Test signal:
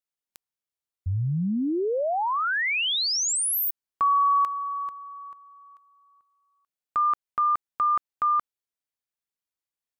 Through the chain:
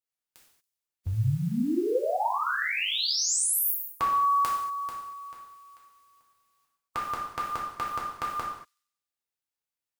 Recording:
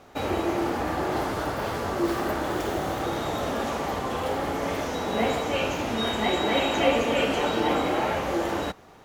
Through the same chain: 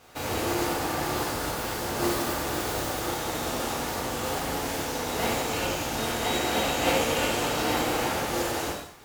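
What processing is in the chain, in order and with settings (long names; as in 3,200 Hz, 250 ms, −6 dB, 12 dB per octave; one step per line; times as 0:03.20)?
compressing power law on the bin magnitudes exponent 0.6
dynamic equaliser 2,200 Hz, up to −4 dB, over −36 dBFS, Q 0.78
delay with a high-pass on its return 94 ms, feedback 51%, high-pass 4,400 Hz, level −19 dB
reverb whose tail is shaped and stops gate 260 ms falling, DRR −5 dB
level −6.5 dB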